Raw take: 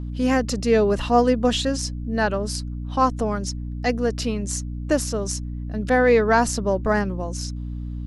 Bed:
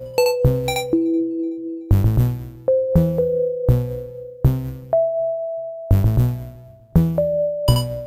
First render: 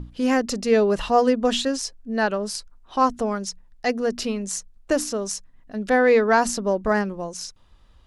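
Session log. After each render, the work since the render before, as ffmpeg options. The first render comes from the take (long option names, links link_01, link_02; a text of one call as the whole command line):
ffmpeg -i in.wav -af "bandreject=frequency=60:width_type=h:width=6,bandreject=frequency=120:width_type=h:width=6,bandreject=frequency=180:width_type=h:width=6,bandreject=frequency=240:width_type=h:width=6,bandreject=frequency=300:width_type=h:width=6" out.wav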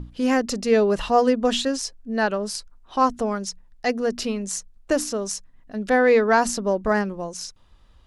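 ffmpeg -i in.wav -af anull out.wav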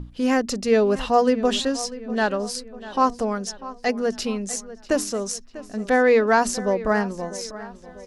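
ffmpeg -i in.wav -filter_complex "[0:a]asplit=2[link_01][link_02];[link_02]adelay=645,lowpass=frequency=4200:poles=1,volume=-16dB,asplit=2[link_03][link_04];[link_04]adelay=645,lowpass=frequency=4200:poles=1,volume=0.5,asplit=2[link_05][link_06];[link_06]adelay=645,lowpass=frequency=4200:poles=1,volume=0.5,asplit=2[link_07][link_08];[link_08]adelay=645,lowpass=frequency=4200:poles=1,volume=0.5[link_09];[link_01][link_03][link_05][link_07][link_09]amix=inputs=5:normalize=0" out.wav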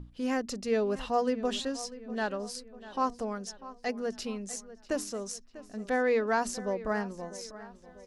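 ffmpeg -i in.wav -af "volume=-10dB" out.wav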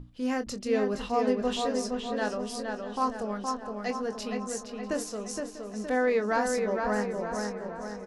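ffmpeg -i in.wav -filter_complex "[0:a]asplit=2[link_01][link_02];[link_02]adelay=24,volume=-9.5dB[link_03];[link_01][link_03]amix=inputs=2:normalize=0,asplit=2[link_04][link_05];[link_05]adelay=467,lowpass=frequency=3300:poles=1,volume=-4dB,asplit=2[link_06][link_07];[link_07]adelay=467,lowpass=frequency=3300:poles=1,volume=0.54,asplit=2[link_08][link_09];[link_09]adelay=467,lowpass=frequency=3300:poles=1,volume=0.54,asplit=2[link_10][link_11];[link_11]adelay=467,lowpass=frequency=3300:poles=1,volume=0.54,asplit=2[link_12][link_13];[link_13]adelay=467,lowpass=frequency=3300:poles=1,volume=0.54,asplit=2[link_14][link_15];[link_15]adelay=467,lowpass=frequency=3300:poles=1,volume=0.54,asplit=2[link_16][link_17];[link_17]adelay=467,lowpass=frequency=3300:poles=1,volume=0.54[link_18];[link_04][link_06][link_08][link_10][link_12][link_14][link_16][link_18]amix=inputs=8:normalize=0" out.wav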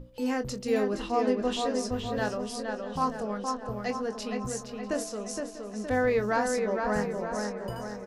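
ffmpeg -i in.wav -i bed.wav -filter_complex "[1:a]volume=-25dB[link_01];[0:a][link_01]amix=inputs=2:normalize=0" out.wav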